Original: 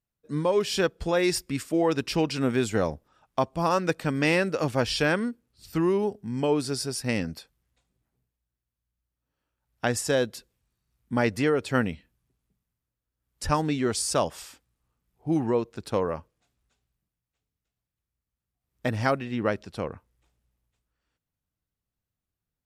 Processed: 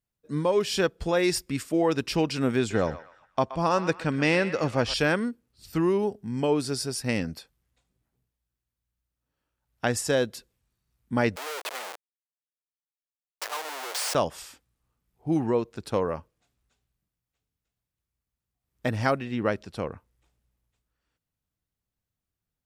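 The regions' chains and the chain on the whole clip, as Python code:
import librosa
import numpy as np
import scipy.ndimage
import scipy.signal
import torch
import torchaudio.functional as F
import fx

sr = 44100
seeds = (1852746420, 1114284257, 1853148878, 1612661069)

y = fx.chain(x, sr, fx.lowpass(hz=7700.0, slope=12),
    fx.echo_banded(ms=124, feedback_pct=41, hz=1700.0, wet_db=-10.5), at=(2.58, 4.94))
y = fx.chain(y, sr, fx.high_shelf(hz=2600.0, db=-8.0),
    fx.schmitt(flips_db=-39.5),
    fx.highpass(hz=550.0, slope=24), at=(11.36, 14.15))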